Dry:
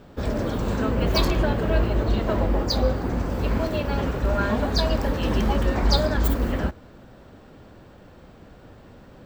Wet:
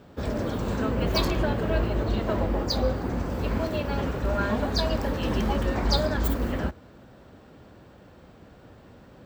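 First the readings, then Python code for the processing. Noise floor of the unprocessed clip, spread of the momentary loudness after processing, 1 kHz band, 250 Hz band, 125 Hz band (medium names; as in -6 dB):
-48 dBFS, 5 LU, -2.5 dB, -2.5 dB, -3.5 dB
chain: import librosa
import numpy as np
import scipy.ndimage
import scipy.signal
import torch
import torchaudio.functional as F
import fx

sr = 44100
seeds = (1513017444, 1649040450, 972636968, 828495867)

y = scipy.signal.sosfilt(scipy.signal.butter(2, 49.0, 'highpass', fs=sr, output='sos'), x)
y = y * 10.0 ** (-2.5 / 20.0)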